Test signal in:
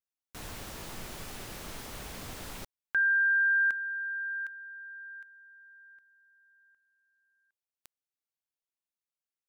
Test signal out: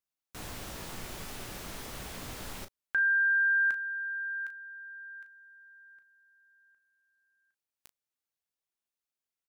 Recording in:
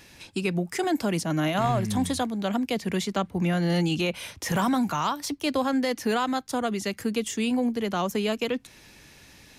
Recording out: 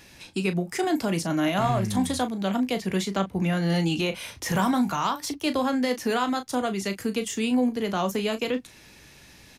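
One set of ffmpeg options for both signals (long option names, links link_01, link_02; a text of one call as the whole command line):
ffmpeg -i in.wav -af "aecho=1:1:16|36:0.237|0.299" out.wav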